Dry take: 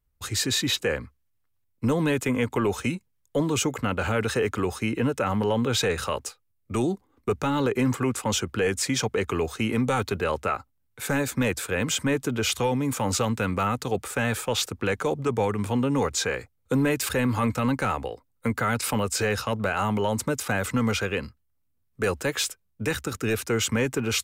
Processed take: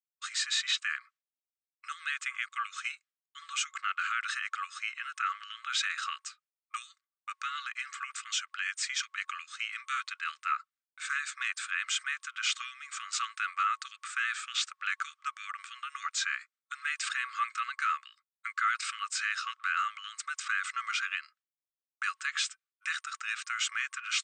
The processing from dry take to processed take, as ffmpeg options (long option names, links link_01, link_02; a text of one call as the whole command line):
ffmpeg -i in.wav -filter_complex "[0:a]asettb=1/sr,asplit=3[link_01][link_02][link_03];[link_01]atrim=end=6.914[link_04];[link_02]atrim=start=6.91:end=10.52,asetpts=PTS-STARTPTS,afade=type=in:duration=0.004:curve=qsin,afade=type=out:start_time=3.606:duration=0.004:curve=qsin,equalizer=frequency=1200:width_type=o:width=0.77:gain=-3.5[link_05];[link_03]atrim=start=10.516[link_06];[link_04][link_05]acrossfade=duration=0.004:curve1=hsin:curve2=qsin[link_07];[link_07][link_06]acrossfade=duration=0.004:curve1=qsin:curve2=hsin,afftfilt=real='re*between(b*sr/4096,1100,8800)':imag='im*between(b*sr/4096,1100,8800)':win_size=4096:overlap=0.75,highshelf=frequency=4500:gain=-9,agate=range=-33dB:threshold=-58dB:ratio=3:detection=peak" out.wav